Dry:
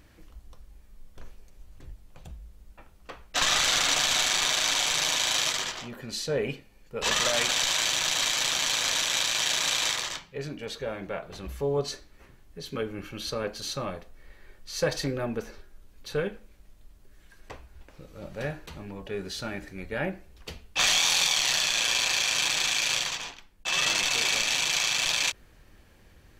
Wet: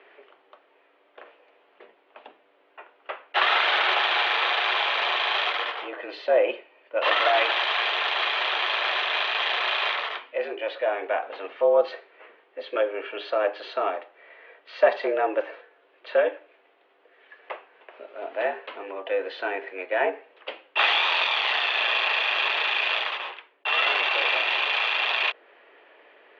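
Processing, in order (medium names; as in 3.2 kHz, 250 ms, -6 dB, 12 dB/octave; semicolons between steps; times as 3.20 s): dynamic bell 2.2 kHz, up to -4 dB, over -40 dBFS, Q 1; mistuned SSB +92 Hz 310–3000 Hz; trim +9 dB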